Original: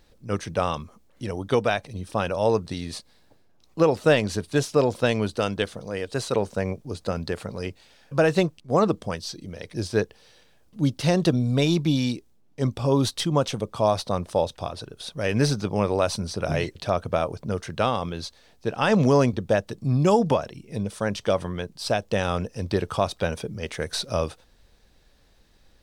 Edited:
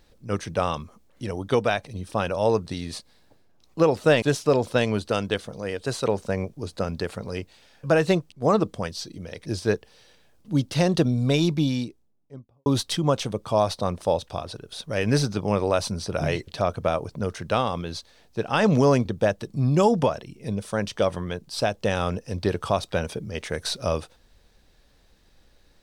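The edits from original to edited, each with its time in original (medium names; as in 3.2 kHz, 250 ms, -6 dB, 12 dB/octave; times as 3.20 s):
4.22–4.50 s: delete
11.70–12.94 s: studio fade out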